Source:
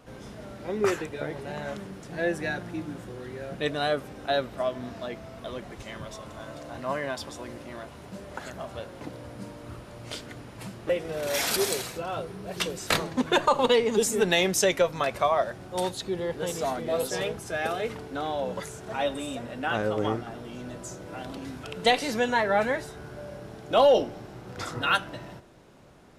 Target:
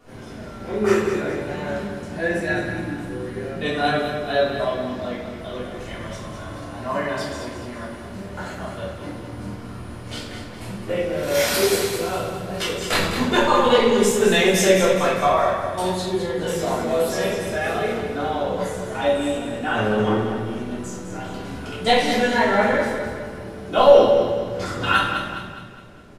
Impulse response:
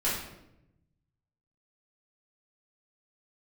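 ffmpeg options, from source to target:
-filter_complex "[0:a]aecho=1:1:207|414|621|828|1035:0.398|0.175|0.0771|0.0339|0.0149[s0];[1:a]atrim=start_sample=2205[s1];[s0][s1]afir=irnorm=-1:irlink=0,volume=0.668"

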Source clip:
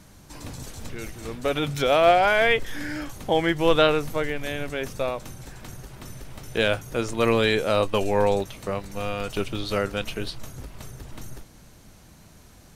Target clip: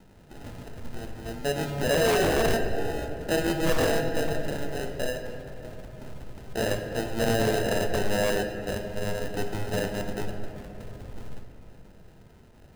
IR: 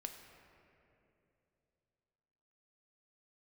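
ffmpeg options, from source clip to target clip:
-filter_complex "[0:a]acrusher=samples=39:mix=1:aa=0.000001[s0];[1:a]atrim=start_sample=2205[s1];[s0][s1]afir=irnorm=-1:irlink=0,aeval=exprs='0.141*(abs(mod(val(0)/0.141+3,4)-2)-1)':c=same"

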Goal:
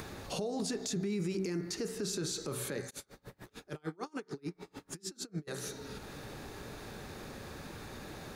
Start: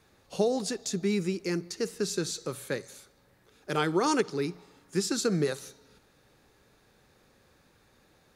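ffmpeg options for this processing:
-filter_complex "[0:a]bandreject=f=63.43:t=h:w=4,bandreject=f=126.86:t=h:w=4,bandreject=f=190.29:t=h:w=4,bandreject=f=253.72:t=h:w=4,bandreject=f=317.15:t=h:w=4,bandreject=f=380.58:t=h:w=4,bandreject=f=444.01:t=h:w=4,bandreject=f=507.44:t=h:w=4,bandreject=f=570.87:t=h:w=4,bandreject=f=634.3:t=h:w=4,bandreject=f=697.73:t=h:w=4,bandreject=f=761.16:t=h:w=4,bandreject=f=824.59:t=h:w=4,bandreject=f=888.02:t=h:w=4,bandreject=f=951.45:t=h:w=4,bandreject=f=1014.88:t=h:w=4,bandreject=f=1078.31:t=h:w=4,bandreject=f=1141.74:t=h:w=4,bandreject=f=1205.17:t=h:w=4,bandreject=f=1268.6:t=h:w=4,bandreject=f=1332.03:t=h:w=4,bandreject=f=1395.46:t=h:w=4,bandreject=f=1458.89:t=h:w=4,bandreject=f=1522.32:t=h:w=4,bandreject=f=1585.75:t=h:w=4,bandreject=f=1649.18:t=h:w=4,bandreject=f=1712.61:t=h:w=4,bandreject=f=1776.04:t=h:w=4,bandreject=f=1839.47:t=h:w=4,bandreject=f=1902.9:t=h:w=4,bandreject=f=1966.33:t=h:w=4,bandreject=f=2029.76:t=h:w=4,bandreject=f=2093.19:t=h:w=4,bandreject=f=2156.62:t=h:w=4,bandreject=f=2220.05:t=h:w=4,bandreject=f=2283.48:t=h:w=4,bandreject=f=2346.91:t=h:w=4,acompressor=threshold=0.0141:ratio=8,lowshelf=f=160:g=3.5,acompressor=mode=upward:threshold=0.00562:ratio=2.5,equalizer=f=410:w=0.32:g=3.5,alimiter=level_in=3.35:limit=0.0631:level=0:latency=1:release=13,volume=0.299,bandreject=f=510:w=12,asplit=3[s0][s1][s2];[s0]afade=t=out:st=2.89:d=0.02[s3];[s1]aeval=exprs='val(0)*pow(10,-33*(0.5-0.5*cos(2*PI*6.7*n/s))/20)':c=same,afade=t=in:st=2.89:d=0.02,afade=t=out:st=5.47:d=0.02[s4];[s2]afade=t=in:st=5.47:d=0.02[s5];[s3][s4][s5]amix=inputs=3:normalize=0,volume=2.24"

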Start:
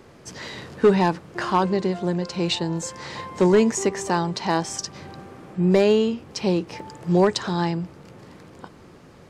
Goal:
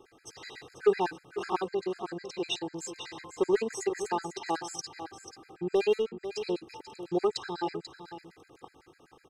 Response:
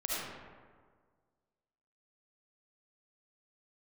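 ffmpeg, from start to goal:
-filter_complex "[0:a]lowshelf=f=150:g=-10,aecho=1:1:2.5:0.63,asplit=3[s0][s1][s2];[s0]afade=t=out:st=5.91:d=0.02[s3];[s1]adynamicsmooth=sensitivity=2:basefreq=580,afade=t=in:st=5.91:d=0.02,afade=t=out:st=6.31:d=0.02[s4];[s2]afade=t=in:st=6.31:d=0.02[s5];[s3][s4][s5]amix=inputs=3:normalize=0,asplit=2[s6][s7];[s7]aecho=0:1:489:0.282[s8];[s6][s8]amix=inputs=2:normalize=0,afftfilt=real='re*gt(sin(2*PI*8*pts/sr)*(1-2*mod(floor(b*sr/1024/1300),2)),0)':imag='im*gt(sin(2*PI*8*pts/sr)*(1-2*mod(floor(b*sr/1024/1300),2)),0)':win_size=1024:overlap=0.75,volume=0.422"

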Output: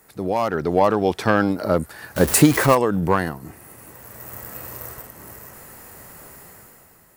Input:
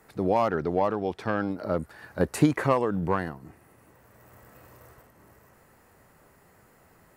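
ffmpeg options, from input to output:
-filter_complex "[0:a]asettb=1/sr,asplit=3[s0][s1][s2];[s0]atrim=end=2.164[s3];[s1]atrim=start=2.16:end=2.75,asetpts=PTS-STARTPTS,afade=t=in:d=0.004:c=qsin,afade=t=out:st=0.586:d=0.004:c=qsin,aeval=exprs='val(0)+0.5*0.0251*sgn(val(0))':c=same[s4];[s2]atrim=start=2.746[s5];[s3][s4]acrossfade=d=0.004:c1=hsin:c2=qsin[s6];[s6][s5]acrossfade=d=0.004:c1=qsin:c2=hsin,crystalizer=i=2:c=0,dynaudnorm=f=160:g=9:m=4.22"

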